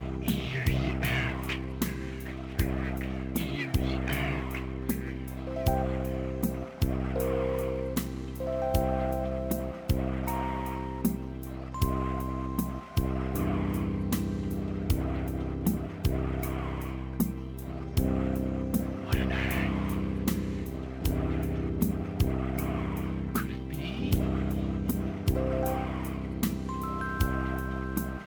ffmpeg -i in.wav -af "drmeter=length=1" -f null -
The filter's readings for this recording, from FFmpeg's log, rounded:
Channel 1: DR: 13.2
Overall DR: 13.2